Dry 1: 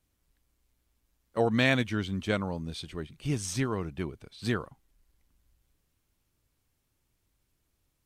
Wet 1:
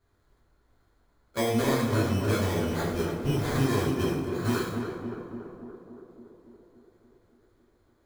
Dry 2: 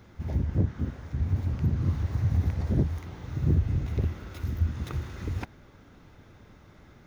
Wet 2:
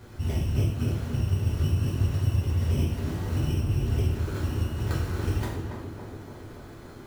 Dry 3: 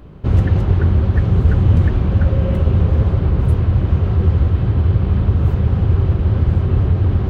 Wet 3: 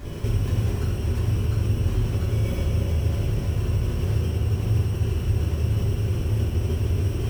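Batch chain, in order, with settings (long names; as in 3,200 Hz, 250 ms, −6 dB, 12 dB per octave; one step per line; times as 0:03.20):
brickwall limiter −10 dBFS
downward compressor 12 to 1, threshold −29 dBFS
sample-rate reduction 2,800 Hz, jitter 0%
on a send: tape delay 284 ms, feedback 76%, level −3 dB, low-pass 1,300 Hz
on the sum: coupled-rooms reverb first 0.67 s, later 3 s, from −27 dB, DRR −6 dB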